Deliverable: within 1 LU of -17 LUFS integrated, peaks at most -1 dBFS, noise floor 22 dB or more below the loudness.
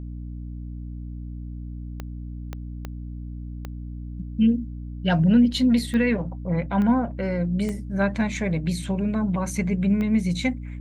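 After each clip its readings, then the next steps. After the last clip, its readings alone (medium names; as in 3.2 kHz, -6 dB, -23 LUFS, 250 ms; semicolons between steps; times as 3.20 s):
clicks found 8; hum 60 Hz; highest harmonic 300 Hz; hum level -31 dBFS; loudness -23.0 LUFS; peak level -9.0 dBFS; loudness target -17.0 LUFS
-> de-click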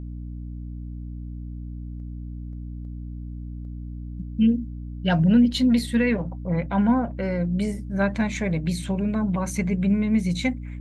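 clicks found 0; hum 60 Hz; highest harmonic 300 Hz; hum level -31 dBFS
-> hum notches 60/120/180/240/300 Hz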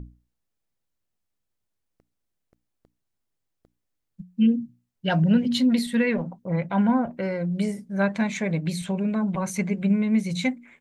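hum not found; loudness -24.5 LUFS; peak level -9.5 dBFS; loudness target -17.0 LUFS
-> trim +7.5 dB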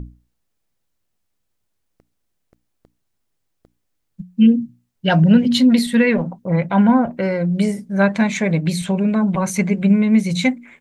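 loudness -17.0 LUFS; peak level -2.0 dBFS; noise floor -72 dBFS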